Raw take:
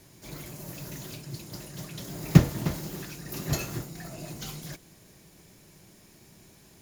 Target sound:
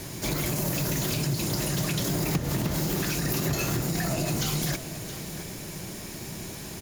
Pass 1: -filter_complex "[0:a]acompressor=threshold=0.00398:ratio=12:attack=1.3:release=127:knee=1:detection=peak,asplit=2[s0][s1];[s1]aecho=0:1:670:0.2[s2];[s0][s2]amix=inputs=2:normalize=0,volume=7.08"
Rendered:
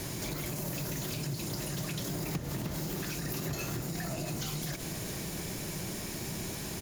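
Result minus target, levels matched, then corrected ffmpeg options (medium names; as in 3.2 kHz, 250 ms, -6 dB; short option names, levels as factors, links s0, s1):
compression: peak gain reduction +8 dB
-filter_complex "[0:a]acompressor=threshold=0.0112:ratio=12:attack=1.3:release=127:knee=1:detection=peak,asplit=2[s0][s1];[s1]aecho=0:1:670:0.2[s2];[s0][s2]amix=inputs=2:normalize=0,volume=7.08"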